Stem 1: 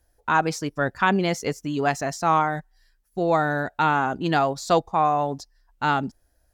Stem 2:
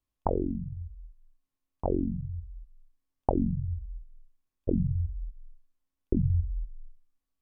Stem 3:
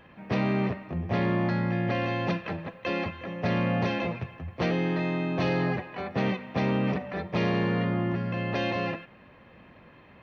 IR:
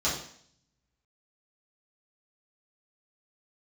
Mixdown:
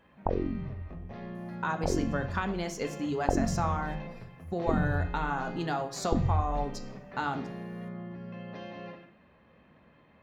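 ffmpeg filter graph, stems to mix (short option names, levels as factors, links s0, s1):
-filter_complex "[0:a]acompressor=threshold=0.0316:ratio=3,adelay=1350,volume=0.708,asplit=2[s0][s1];[s1]volume=0.158[s2];[1:a]volume=0.841[s3];[2:a]acompressor=threshold=0.02:ratio=4,volume=0.299,asplit=2[s4][s5];[s5]volume=0.224[s6];[3:a]atrim=start_sample=2205[s7];[s2][s6]amix=inputs=2:normalize=0[s8];[s8][s7]afir=irnorm=-1:irlink=0[s9];[s0][s3][s4][s9]amix=inputs=4:normalize=0"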